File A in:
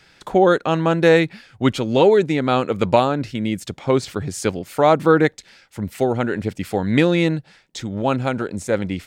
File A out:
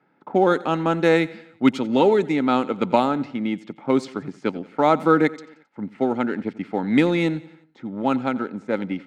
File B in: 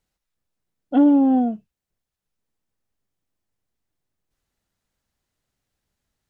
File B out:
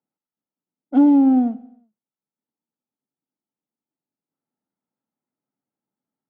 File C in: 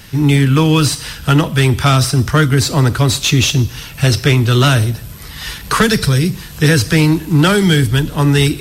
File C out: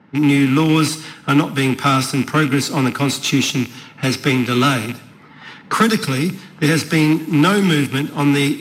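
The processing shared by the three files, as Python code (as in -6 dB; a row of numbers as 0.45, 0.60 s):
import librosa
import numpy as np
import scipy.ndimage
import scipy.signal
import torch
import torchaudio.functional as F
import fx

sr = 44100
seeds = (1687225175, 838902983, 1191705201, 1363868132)

p1 = fx.rattle_buzz(x, sr, strikes_db=-13.0, level_db=-12.0)
p2 = fx.env_lowpass(p1, sr, base_hz=980.0, full_db=-12.5)
p3 = scipy.signal.sosfilt(scipy.signal.butter(4, 150.0, 'highpass', fs=sr, output='sos'), p2)
p4 = np.sign(p3) * np.maximum(np.abs(p3) - 10.0 ** (-27.0 / 20.0), 0.0)
p5 = p3 + (p4 * librosa.db_to_amplitude(-9.0))
p6 = fx.small_body(p5, sr, hz=(260.0, 870.0, 1300.0, 2100.0), ring_ms=30, db=8)
p7 = p6 + fx.echo_feedback(p6, sr, ms=89, feedback_pct=52, wet_db=-20.0, dry=0)
y = p7 * librosa.db_to_amplitude(-7.5)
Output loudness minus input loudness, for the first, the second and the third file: -2.5, +1.5, -3.5 LU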